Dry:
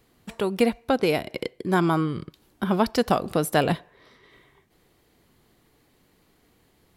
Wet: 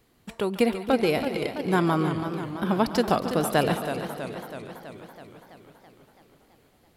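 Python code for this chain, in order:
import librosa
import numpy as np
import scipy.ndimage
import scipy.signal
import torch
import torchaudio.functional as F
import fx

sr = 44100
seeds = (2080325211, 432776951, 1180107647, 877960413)

y = fx.echo_split(x, sr, split_hz=630.0, low_ms=273, high_ms=142, feedback_pct=52, wet_db=-12)
y = fx.echo_warbled(y, sr, ms=328, feedback_pct=64, rate_hz=2.8, cents=109, wet_db=-9.5)
y = y * librosa.db_to_amplitude(-1.5)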